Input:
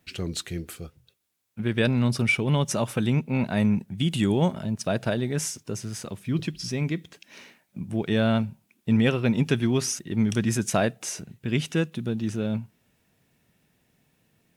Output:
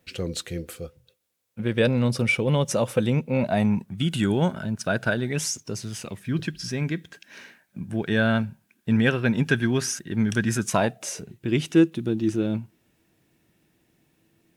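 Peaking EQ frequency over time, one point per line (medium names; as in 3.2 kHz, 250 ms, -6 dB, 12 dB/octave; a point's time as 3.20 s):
peaking EQ +13.5 dB 0.22 oct
3.35 s 510 Hz
4.09 s 1.5 kHz
5.26 s 1.5 kHz
5.55 s 7.3 kHz
6.26 s 1.6 kHz
10.50 s 1.6 kHz
11.38 s 330 Hz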